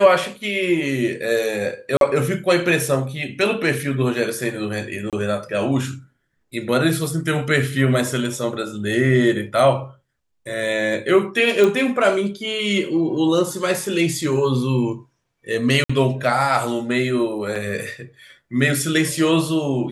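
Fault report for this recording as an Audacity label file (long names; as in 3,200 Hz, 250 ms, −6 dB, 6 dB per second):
1.970000	2.010000	drop-out 42 ms
5.100000	5.130000	drop-out 27 ms
11.640000	11.640000	click
15.840000	15.890000	drop-out 55 ms
17.550000	17.560000	drop-out 5.7 ms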